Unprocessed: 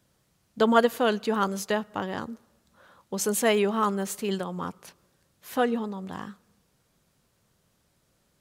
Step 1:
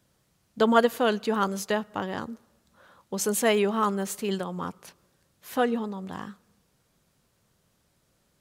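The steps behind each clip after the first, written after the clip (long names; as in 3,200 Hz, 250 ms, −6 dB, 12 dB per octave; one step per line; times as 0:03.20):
no processing that can be heard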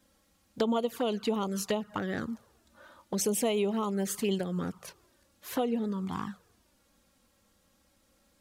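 downward compressor 5 to 1, threshold −29 dBFS, peak gain reduction 14 dB
flanger swept by the level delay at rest 3.8 ms, full sweep at −28 dBFS
level +4.5 dB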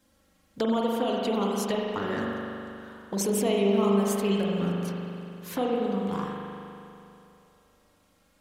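spring reverb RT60 2.8 s, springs 40 ms, chirp 60 ms, DRR −2.5 dB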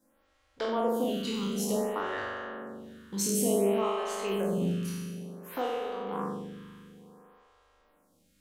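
peak hold with a decay on every bin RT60 1.21 s
phaser with staggered stages 0.56 Hz
level −2.5 dB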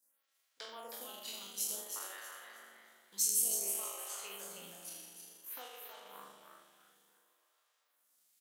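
transient designer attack +2 dB, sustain −10 dB
first difference
echo with shifted repeats 318 ms, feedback 30%, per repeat +140 Hz, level −6 dB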